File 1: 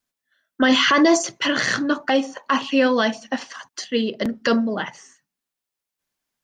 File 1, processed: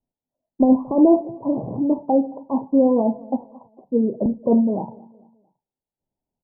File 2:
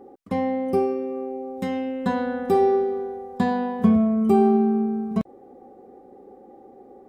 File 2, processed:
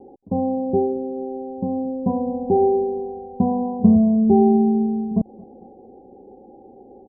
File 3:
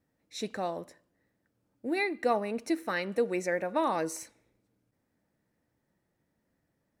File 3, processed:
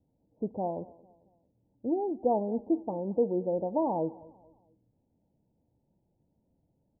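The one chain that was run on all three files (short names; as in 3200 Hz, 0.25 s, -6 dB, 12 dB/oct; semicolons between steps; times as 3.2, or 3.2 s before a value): steep low-pass 950 Hz 96 dB/oct; low shelf 210 Hz +8 dB; feedback echo 0.224 s, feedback 40%, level -22.5 dB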